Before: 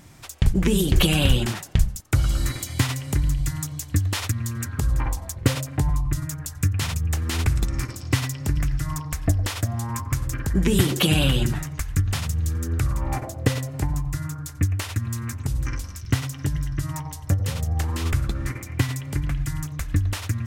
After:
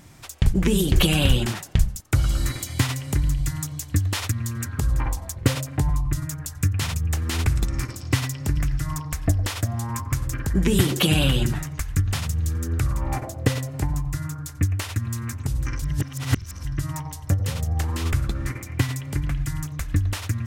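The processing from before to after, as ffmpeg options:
-filter_complex "[0:a]asplit=3[a][b][c];[a]atrim=end=15.822[d];[b]atrim=start=15.818:end=16.652,asetpts=PTS-STARTPTS,areverse[e];[c]atrim=start=16.648[f];[d][e]acrossfade=d=0.004:c1=hsin:c2=hsin[g];[g][f]acrossfade=d=0.004:c1=hsin:c2=hsin"

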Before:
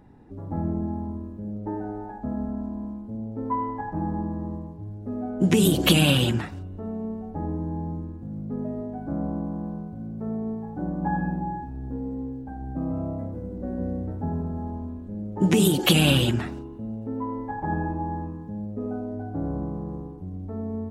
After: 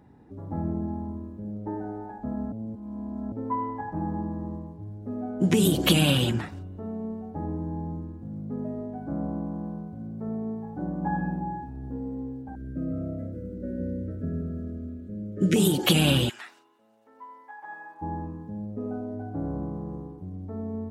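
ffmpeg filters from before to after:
-filter_complex "[0:a]asettb=1/sr,asplit=3[a][b][c];[a]atrim=end=12.554[d];[b]atrim=start=12.55:end=15.56,asetpts=PTS-STARTPTS,afade=t=in:d=0.004:c=qsin,afade=t=out:st=3.006:d=0.004:c=qsin,asuperstop=centerf=900:order=20:qfactor=1.5[e];[c]atrim=start=15.556[f];[d][e]acrossfade=d=0.004:c1=hsin:c2=qsin[g];[g][f]acrossfade=d=0.004:c1=qsin:c2=hsin,asplit=3[h][i][j];[h]afade=t=out:st=16.28:d=0.02[k];[i]highpass=1.4k,afade=t=in:st=16.28:d=0.02,afade=t=out:st=18.01:d=0.02[l];[j]afade=t=in:st=18.01:d=0.02[m];[k][l][m]amix=inputs=3:normalize=0,asplit=3[n][o][p];[n]atrim=end=2.522[q];[o]atrim=start=2.518:end=3.322,asetpts=PTS-STARTPTS,areverse[r];[p]atrim=start=3.318[s];[q][r]acrossfade=d=0.004:c1=hsin:c2=hsin[t];[t][s]acrossfade=d=0.004:c1=hsin:c2=hsin,highpass=56,bandreject=f=2.7k:w=29,volume=-2dB"

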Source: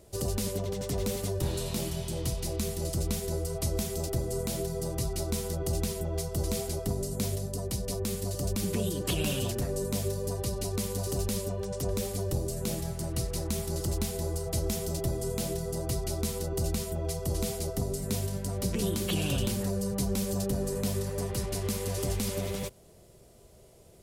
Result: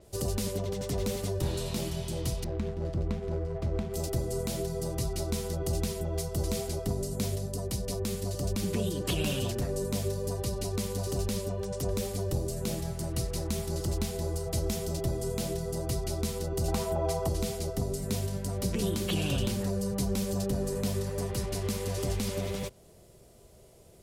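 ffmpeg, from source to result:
-filter_complex "[0:a]asettb=1/sr,asplit=3[a][b][c];[a]atrim=end=2.444[d];[b]atrim=start=2.44:end=3.94,asetpts=PTS-STARTPTS,afade=t=in:d=0.004:c=qsin,afade=t=out:st=1.496:d=0.004:c=qsin,adynamicsmooth=sensitivity=4.5:basefreq=870[e];[c]atrim=start=3.936[f];[d][e]acrossfade=d=0.004:c1=hsin:c2=qsin[g];[g][f]acrossfade=d=0.004:c1=qsin:c2=hsin,asettb=1/sr,asplit=3[h][i][j];[h]atrim=end=16.684[k];[i]atrim=start=16.68:end=17.29,asetpts=PTS-STARTPTS,afade=t=in:d=0.004:c=qsin,afade=t=out:st=0.606:d=0.004:c=qsin,equalizer=f=870:t=o:w=1.3:g=13[l];[j]atrim=start=17.286[m];[k][l]acrossfade=d=0.004:c1=hsin:c2=qsin[n];[n][m]acrossfade=d=0.004:c1=qsin:c2=hsin,adynamicequalizer=threshold=0.00355:dfrequency=7200:dqfactor=0.7:tfrequency=7200:tqfactor=0.7:attack=5:release=100:ratio=0.375:range=3:mode=cutabove:tftype=highshelf"

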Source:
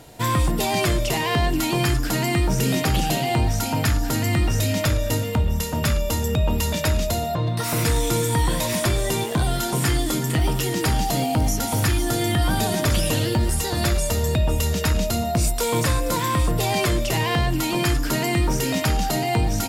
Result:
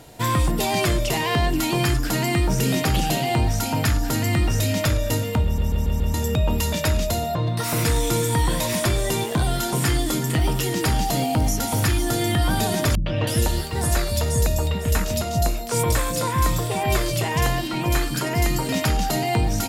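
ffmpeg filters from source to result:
-filter_complex "[0:a]asettb=1/sr,asplit=3[a][b][c];[a]atrim=end=12.954[d];[b]atrim=start=12.95:end=18.69,asetpts=PTS-STARTPTS,afade=t=in:d=0.004:c=qsin,afade=t=out:st=5.736:d=0.004:c=qsin,acrossover=split=260|3200[e][f][g];[f]adelay=110[h];[g]adelay=320[i];[e][h][i]amix=inputs=3:normalize=0,atrim=end_sample=253134[j];[c]atrim=start=18.686[k];[d][j]acrossfade=d=0.004:c1=hsin:c2=qsin[l];[l][k]acrossfade=d=0.004:c1=qsin:c2=hsin,asplit=6[m][n][o][p][q][r];[m]atrim=end=5.582[s];[n]atrim=start=5.438:end=5.582[t];[o]atrim=start=5.438:end=5.582[u];[p]atrim=start=5.438:end=5.582[v];[q]atrim=start=5.438:end=5.582[w];[r]atrim=start=6.138[x];[s][t]acrossfade=d=0.004:c1=hsin:c2=hsin[y];[y][u]acrossfade=d=0.004:c1=hsin:c2=hsin[z];[z][v]acrossfade=d=0.004:c1=hsin:c2=hsin[aa];[aa][w]acrossfade=d=0.004:c1=hsin:c2=hsin[ab];[ab][x]acrossfade=d=0.004:c1=hsin:c2=hsin"

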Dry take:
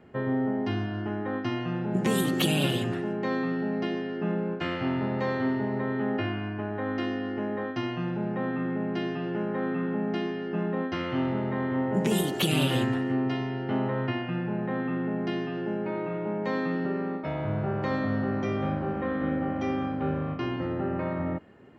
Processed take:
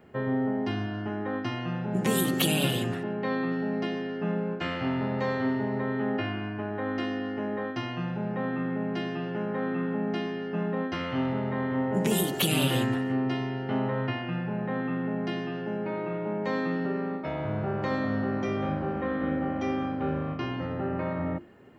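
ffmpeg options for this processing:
-filter_complex "[0:a]asettb=1/sr,asplit=3[a][b][c];[a]atrim=end=3.034[d];[b]atrim=start=3.03:end=3.52,asetpts=PTS-STARTPTS,afade=t=in:d=0.004:c=qsin,afade=t=out:st=0.486:d=0.004:c=qsin,lowpass=f=4.4k:w=0.5412,lowpass=f=4.4k:w=1.3066[e];[c]atrim=start=3.516[f];[d][e]acrossfade=d=0.004:c1=hsin:c2=qsin[g];[g][f]acrossfade=d=0.004:c1=qsin:c2=hsin,highshelf=f=11k:g=11.5,bandreject=f=50:t=h:w=6,bandreject=f=100:t=h:w=6,bandreject=f=150:t=h:w=6,bandreject=f=200:t=h:w=6,bandreject=f=250:t=h:w=6,bandreject=f=300:t=h:w=6,bandreject=f=350:t=h:w=6"

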